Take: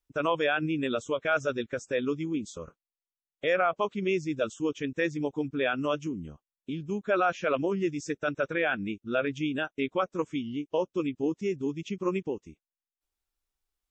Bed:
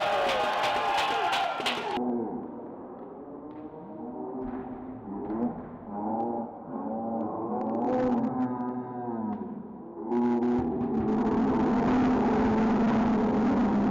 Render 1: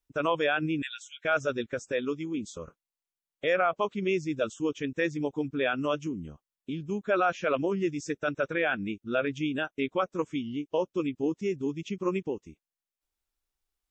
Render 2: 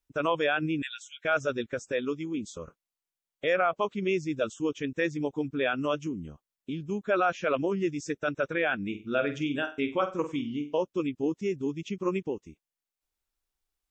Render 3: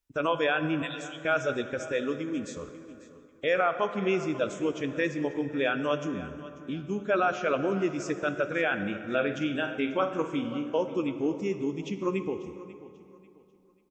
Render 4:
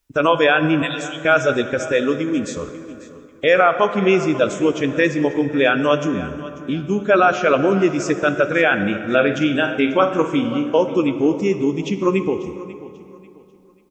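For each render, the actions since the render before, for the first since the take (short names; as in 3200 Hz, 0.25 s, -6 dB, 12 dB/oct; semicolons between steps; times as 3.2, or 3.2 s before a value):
0.82–1.24 brick-wall FIR high-pass 1400 Hz; 1.92–2.38 low shelf 170 Hz -8.5 dB
8.87–10.78 flutter echo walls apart 8.2 m, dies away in 0.31 s
feedback echo 0.541 s, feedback 31%, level -17.5 dB; plate-style reverb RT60 2.8 s, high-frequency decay 0.55×, DRR 9 dB
gain +11.5 dB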